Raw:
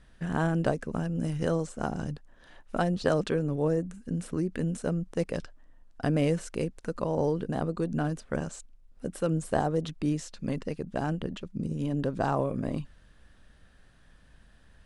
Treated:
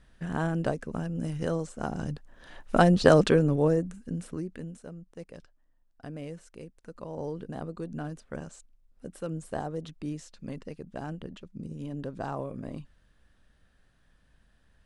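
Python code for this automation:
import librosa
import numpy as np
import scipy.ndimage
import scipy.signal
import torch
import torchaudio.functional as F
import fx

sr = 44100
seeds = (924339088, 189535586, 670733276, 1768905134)

y = fx.gain(x, sr, db=fx.line((1.8, -2.0), (2.77, 7.5), (3.27, 7.5), (4.36, -4.5), (4.88, -14.0), (6.67, -14.0), (7.38, -7.0)))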